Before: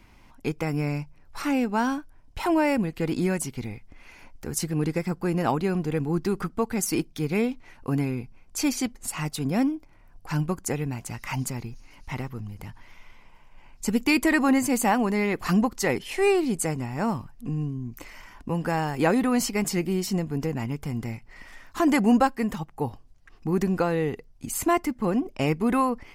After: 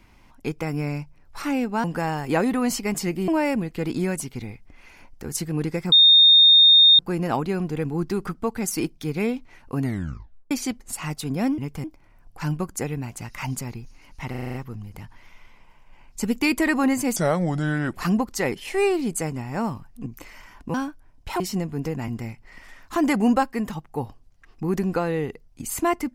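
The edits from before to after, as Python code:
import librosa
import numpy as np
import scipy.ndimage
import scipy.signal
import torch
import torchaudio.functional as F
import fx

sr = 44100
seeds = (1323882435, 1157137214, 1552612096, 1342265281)

y = fx.edit(x, sr, fx.swap(start_s=1.84, length_s=0.66, other_s=18.54, other_length_s=1.44),
    fx.insert_tone(at_s=5.14, length_s=1.07, hz=3670.0, db=-9.5),
    fx.tape_stop(start_s=7.95, length_s=0.71),
    fx.stutter(start_s=12.19, slice_s=0.04, count=7),
    fx.speed_span(start_s=14.81, length_s=0.57, speed=0.73),
    fx.cut(start_s=17.5, length_s=0.36),
    fx.move(start_s=20.66, length_s=0.26, to_s=9.73), tone=tone)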